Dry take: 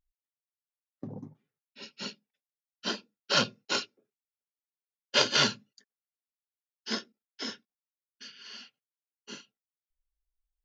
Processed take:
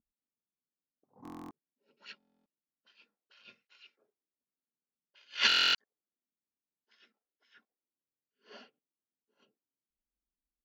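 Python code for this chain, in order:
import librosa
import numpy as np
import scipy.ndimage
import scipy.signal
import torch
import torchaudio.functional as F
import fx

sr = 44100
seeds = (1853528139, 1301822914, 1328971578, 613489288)

p1 = fx.auto_wah(x, sr, base_hz=230.0, top_hz=2400.0, q=2.2, full_db=-33.5, direction='up')
p2 = fx.over_compress(p1, sr, threshold_db=-34.0, ratio=-0.5)
p3 = p1 + F.gain(torch.from_numpy(p2), -0.5).numpy()
p4 = fx.buffer_glitch(p3, sr, at_s=(1.23, 2.18, 5.47, 8.03), block=1024, repeats=11)
p5 = fx.attack_slew(p4, sr, db_per_s=240.0)
y = F.gain(torch.from_numpy(p5), 5.0).numpy()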